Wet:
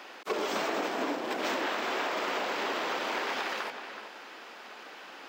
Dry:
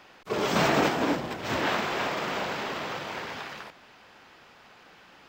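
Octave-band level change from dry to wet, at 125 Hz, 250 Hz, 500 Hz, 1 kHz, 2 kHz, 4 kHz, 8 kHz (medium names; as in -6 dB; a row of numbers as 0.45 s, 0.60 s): -20.0 dB, -6.5 dB, -3.0 dB, -2.5 dB, -2.0 dB, -2.0 dB, -3.5 dB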